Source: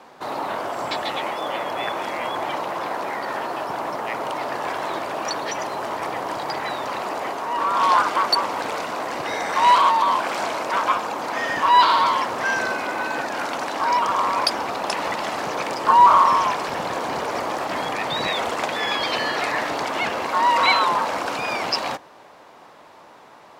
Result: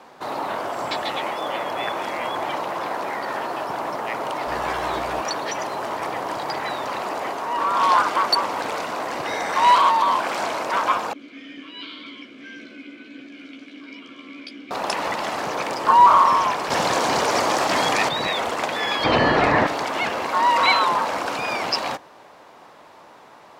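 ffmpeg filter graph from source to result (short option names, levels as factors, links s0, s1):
-filter_complex "[0:a]asettb=1/sr,asplit=3[s0][s1][s2];[s0]atrim=end=4.474[s3];[s1]atrim=start=4.47:end=5.21,asetpts=PTS-STARTPTS,afade=t=in:d=0.004:c=qsin,afade=t=out:st=0.736:d=0.004:c=qsin,asplit=2[s4][s5];[s5]adelay=13,volume=0.708[s6];[s4][s6]amix=inputs=2:normalize=0,atrim=end_sample=32634,aeval=exprs='val(0)+0.00891*(sin(2*PI*60*n/s)+sin(2*PI*2*60*n/s)/2+sin(2*PI*3*60*n/s)/3+sin(2*PI*4*60*n/s)/4+sin(2*PI*5*60*n/s)/5)':c=same[s7];[s2]atrim=start=5.206[s8];[s3][s7]acrossfade=d=0.004:c1=hsin:c2=qsin[s9];[s9][s8]acrossfade=d=0.004:c1=qsin:c2=hsin,asettb=1/sr,asplit=3[s10][s11][s12];[s10]atrim=end=11.134[s13];[s11]atrim=start=11.13:end=14.71,asetpts=PTS-STARTPTS,afade=t=in:d=0.004:c=qsin,afade=t=out:st=3.576:d=0.004:c=qsin,asplit=3[s14][s15][s16];[s14]bandpass=f=270:t=q:w=8,volume=1[s17];[s15]bandpass=f=2290:t=q:w=8,volume=0.501[s18];[s16]bandpass=f=3010:t=q:w=8,volume=0.355[s19];[s17][s18][s19]amix=inputs=3:normalize=0,bandreject=f=1900:w=5.2,asplit=2[s20][s21];[s21]adelay=14,volume=0.631[s22];[s20][s22]amix=inputs=2:normalize=0,atrim=end_sample=157878[s23];[s12]atrim=start=14.706[s24];[s13][s23]acrossfade=d=0.004:c1=hsin:c2=qsin[s25];[s25][s24]acrossfade=d=0.004:c1=qsin:c2=hsin,asettb=1/sr,asplit=3[s26][s27][s28];[s26]atrim=end=16.704[s29];[s27]atrim=start=16.7:end=18.09,asetpts=PTS-STARTPTS,afade=t=in:d=0.004:c=qsin,afade=t=out:st=1.386:d=0.004:c=qsin,highpass=48,equalizer=f=6300:w=0.67:g=7.5,acontrast=20[s30];[s28]atrim=start=18.086[s31];[s29][s30]acrossfade=d=0.004:c1=hsin:c2=qsin[s32];[s32][s31]acrossfade=d=0.004:c1=qsin:c2=hsin,asettb=1/sr,asplit=3[s33][s34][s35];[s33]atrim=end=19.044[s36];[s34]atrim=start=19.04:end=19.67,asetpts=PTS-STARTPTS,afade=t=in:d=0.004:c=qsin,afade=t=out:st=0.626:d=0.004:c=qsin,aemphasis=mode=reproduction:type=riaa,acontrast=53[s37];[s35]atrim=start=19.666[s38];[s36][s37]acrossfade=d=0.004:c1=hsin:c2=qsin[s39];[s39][s38]acrossfade=d=0.004:c1=qsin:c2=hsin"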